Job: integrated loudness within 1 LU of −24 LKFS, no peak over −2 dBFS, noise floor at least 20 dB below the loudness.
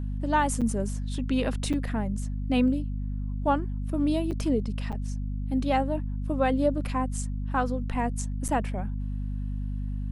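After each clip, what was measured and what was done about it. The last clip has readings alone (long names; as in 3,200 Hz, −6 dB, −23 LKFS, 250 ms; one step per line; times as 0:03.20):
number of dropouts 5; longest dropout 6.7 ms; mains hum 50 Hz; hum harmonics up to 250 Hz; level of the hum −28 dBFS; integrated loudness −29.0 LKFS; sample peak −12.5 dBFS; target loudness −24.0 LKFS
→ repair the gap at 0:00.61/0:01.73/0:04.31/0:04.92/0:08.48, 6.7 ms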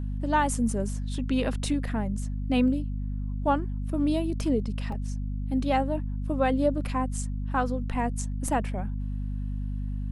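number of dropouts 0; mains hum 50 Hz; hum harmonics up to 250 Hz; level of the hum −28 dBFS
→ hum removal 50 Hz, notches 5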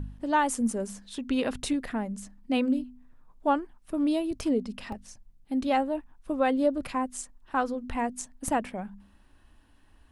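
mains hum none found; integrated loudness −29.5 LKFS; sample peak −13.5 dBFS; target loudness −24.0 LKFS
→ level +5.5 dB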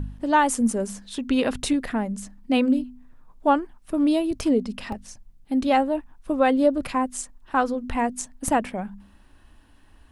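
integrated loudness −24.0 LKFS; sample peak −8.0 dBFS; background noise floor −54 dBFS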